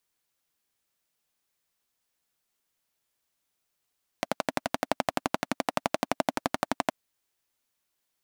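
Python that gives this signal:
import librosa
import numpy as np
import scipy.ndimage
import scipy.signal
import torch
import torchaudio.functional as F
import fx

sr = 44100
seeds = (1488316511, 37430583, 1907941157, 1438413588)

y = fx.engine_single(sr, seeds[0], length_s=2.67, rpm=1400, resonances_hz=(270.0, 640.0))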